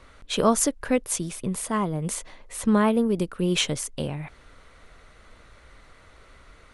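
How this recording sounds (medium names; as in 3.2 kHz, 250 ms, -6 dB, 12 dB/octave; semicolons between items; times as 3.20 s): noise floor -53 dBFS; spectral tilt -4.0 dB/octave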